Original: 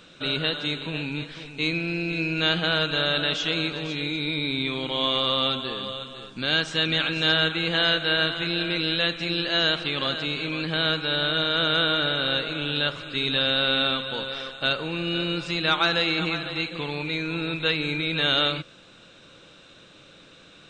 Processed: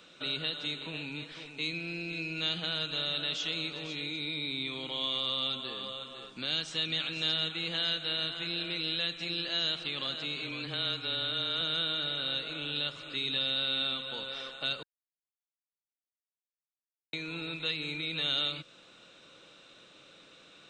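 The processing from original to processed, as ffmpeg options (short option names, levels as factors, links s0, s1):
-filter_complex "[0:a]asettb=1/sr,asplit=3[s0][s1][s2];[s0]atrim=end=10.424[s3];[s1]atrim=start=10.42:end=11.61,asetpts=PTS-STARTPTS,afade=t=in:d=0.004:c=qsin,afade=t=out:st=1.186:d=0.004:c=qsin,afreqshift=-21[s4];[s2]atrim=start=11.606[s5];[s3][s4]acrossfade=d=0.004:c1=hsin:c2=qsin[s6];[s6][s5]acrossfade=d=0.004:c1=qsin:c2=hsin,asplit=3[s7][s8][s9];[s7]atrim=end=14.83,asetpts=PTS-STARTPTS,afade=t=out:st=14.826:d=0.004:c=hsin[s10];[s8]atrim=start=14.83:end=17.13,asetpts=PTS-STARTPTS,volume=0[s11];[s9]atrim=start=17.13,asetpts=PTS-STARTPTS,afade=t=in:d=0.004:c=hsin[s12];[s10][s11][s12]concat=n=3:v=0:a=1,lowshelf=f=170:g=-12,bandreject=f=1600:w=17,acrossover=split=220|3000[s13][s14][s15];[s14]acompressor=threshold=0.0141:ratio=3[s16];[s13][s16][s15]amix=inputs=3:normalize=0,volume=0.596"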